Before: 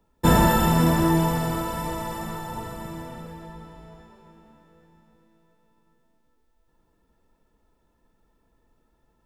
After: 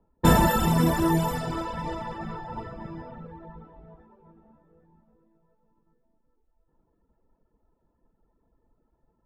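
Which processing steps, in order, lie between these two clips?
reverb reduction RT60 0.88 s
0:01.31–0:03.10: steady tone 5,000 Hz −54 dBFS
low-pass that shuts in the quiet parts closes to 1,000 Hz, open at −22 dBFS

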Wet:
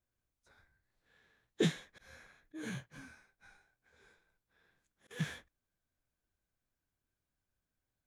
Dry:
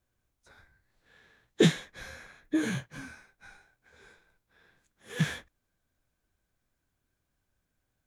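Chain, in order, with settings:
0:01.91–0:05.11: volume swells 159 ms
level −9 dB

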